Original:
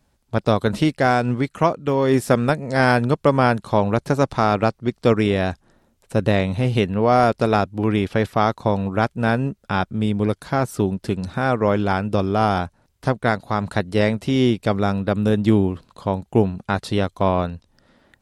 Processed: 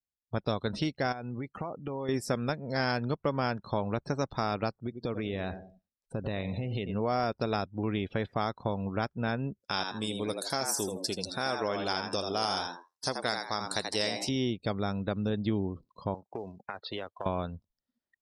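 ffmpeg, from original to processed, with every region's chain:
-filter_complex "[0:a]asettb=1/sr,asplit=3[a][b][c];[a]atrim=end=1.124[d];[b]atrim=start=1.12:end=2.09,asetpts=PTS-STARTPTS,afade=t=in:d=0.004:c=qsin,afade=t=out:st=0.966:d=0.004:c=qsin,acompressor=threshold=-24dB:ratio=16:attack=3.2:release=140:knee=1:detection=peak,equalizer=f=800:t=o:w=0.22:g=5.5[e];[c]atrim=start=2.086[f];[d][e]acrossfade=d=0.004:c1=hsin:c2=qsin[g];[g][f]acrossfade=d=0.004:c1=qsin:c2=hsin,asettb=1/sr,asplit=3[h][i][j];[h]atrim=end=4.774[k];[i]atrim=start=4.77:end=6.95,asetpts=PTS-STARTPTS,afade=t=in:d=0.004:c=qsin,afade=t=out:st=2.176:d=0.004:c=qsin,aecho=1:1:91|182|273|364:0.178|0.0782|0.0344|0.0151,atrim=end_sample=96138,acompressor=threshold=-21dB:ratio=4:attack=3.2:release=140:knee=1:detection=peak[l];[j]atrim=start=6.946[m];[k][l]acrossfade=d=0.004:c1=hsin:c2=qsin[n];[n][m]acrossfade=d=0.004:c1=qsin:c2=hsin,asettb=1/sr,asplit=3[o][p][q];[o]atrim=end=9.604[r];[p]atrim=start=9.6:end=14.29,asetpts=PTS-STARTPTS,afade=t=in:d=0.004:c=qsin,afade=t=out:st=4.686:d=0.004:c=qsin,bass=f=250:g=-10,treble=f=4k:g=14,asplit=5[s][t][u][v][w];[t]adelay=81,afreqshift=85,volume=-6dB[x];[u]adelay=162,afreqshift=170,volume=-15.6dB[y];[v]adelay=243,afreqshift=255,volume=-25.3dB[z];[w]adelay=324,afreqshift=340,volume=-34.9dB[aa];[s][x][y][z][aa]amix=inputs=5:normalize=0,atrim=end_sample=206829[ab];[q]atrim=start=14.286[ac];[r][ab]acrossfade=d=0.004:c1=hsin:c2=qsin[ad];[ad][ac]acrossfade=d=0.004:c1=qsin:c2=hsin,asettb=1/sr,asplit=3[ae][af][ag];[ae]atrim=end=16.144[ah];[af]atrim=start=16.14:end=17.26,asetpts=PTS-STARTPTS,afade=t=in:d=0.004:c=qsin,afade=t=out:st=1.116:d=0.004:c=qsin,acrossover=split=370 4200:gain=0.178 1 0.0891[ai][aj][ak];[ai][aj][ak]amix=inputs=3:normalize=0,acompressor=threshold=-25dB:ratio=20:attack=3.2:release=140:knee=1:detection=peak,acrusher=bits=3:mode=log:mix=0:aa=0.000001[al];[ag]atrim=start=17.256[am];[ah][al]acrossfade=d=0.004:c1=hsin:c2=qsin[an];[an][am]acrossfade=d=0.004:c1=qsin:c2=hsin,afftdn=nr=33:nf=-38,equalizer=f=5.2k:t=o:w=1.1:g=11.5,acompressor=threshold=-25dB:ratio=2,volume=-6.5dB"

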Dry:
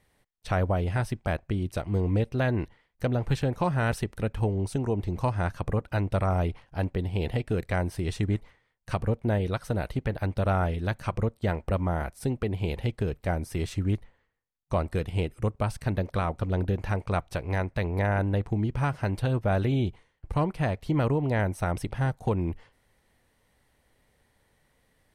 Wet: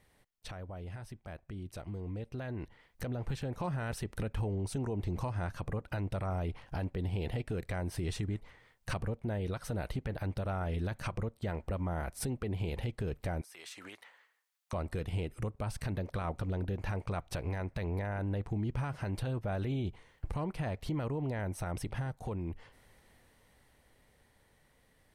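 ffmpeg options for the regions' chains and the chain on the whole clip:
-filter_complex "[0:a]asettb=1/sr,asplit=3[a][b][c];[a]atrim=end=13.414[d];[b]atrim=start=13.41:end=14.73,asetpts=PTS-STARTPTS,afade=t=in:d=0.004:c=qsin,afade=t=out:st=1.316:d=0.004:c=qsin,highpass=970,acompressor=threshold=-53dB:ratio=16:attack=3.2:release=140:knee=1:detection=peak[e];[c]atrim=start=14.726[f];[d][e]acrossfade=d=0.004:c1=hsin:c2=qsin[g];[g][f]acrossfade=d=0.004:c1=qsin:c2=hsin,acompressor=threshold=-39dB:ratio=8,alimiter=level_in=12dB:limit=-24dB:level=0:latency=1:release=14,volume=-12dB,dynaudnorm=f=170:g=31:m=9.5dB"

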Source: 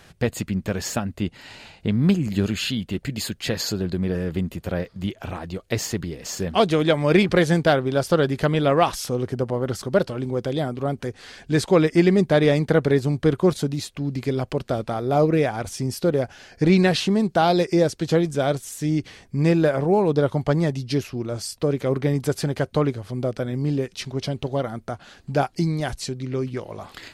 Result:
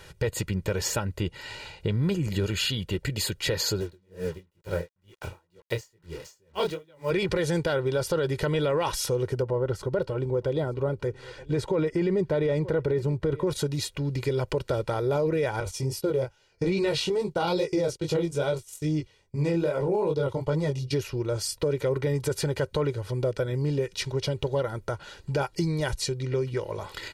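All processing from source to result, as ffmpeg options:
-filter_complex "[0:a]asettb=1/sr,asplit=3[a][b][c];[a]atrim=end=3.804[d];[b]atrim=start=3.8:end=7.11,asetpts=PTS-STARTPTS,afade=t=in:d=0.004:c=qsin,afade=t=out:st=3.306:d=0.004:c=qsin,flanger=delay=17.5:depth=8:speed=2.3,acrusher=bits=6:mix=0:aa=0.5,aeval=exprs='val(0)*pow(10,-38*(0.5-0.5*cos(2*PI*2.1*n/s))/20)':c=same[e];[c]atrim=start=7.106[f];[d][e]acrossfade=d=0.004:c1=hsin:c2=qsin[g];[g][f]acrossfade=d=0.004:c1=qsin:c2=hsin,asettb=1/sr,asplit=3[h][i][j];[h]atrim=end=9.424[k];[i]atrim=start=9.42:end=13.47,asetpts=PTS-STARTPTS,afade=t=in:d=0.004:c=qsin,afade=t=out:st=4.046:d=0.004:c=qsin,highshelf=f=2.4k:g=-11.5,bandreject=f=1.7k:w=14,aecho=1:1:923:0.0631,atrim=end_sample=178605[l];[j]atrim=start=13.466[m];[k][l]acrossfade=d=0.004:c1=hsin:c2=qsin[n];[n][m]acrossfade=d=0.004:c1=qsin:c2=hsin,asettb=1/sr,asplit=3[o][p][q];[o]atrim=end=15.604[r];[p]atrim=start=15.6:end=20.93,asetpts=PTS-STARTPTS,afade=t=in:d=0.004:c=qsin,afade=t=out:st=5.326:d=0.004:c=qsin,agate=range=-16dB:threshold=-36dB:ratio=16:release=100:detection=peak,equalizer=f=1.7k:t=o:w=0.2:g=-11.5,flanger=delay=19:depth=4.9:speed=2.4[s];[q]atrim=start=20.926[t];[r][s]acrossfade=d=0.004:c1=hsin:c2=qsin[u];[u][t]acrossfade=d=0.004:c1=qsin:c2=hsin,aecho=1:1:2.1:0.72,alimiter=limit=-13.5dB:level=0:latency=1:release=11,acompressor=threshold=-25dB:ratio=2"

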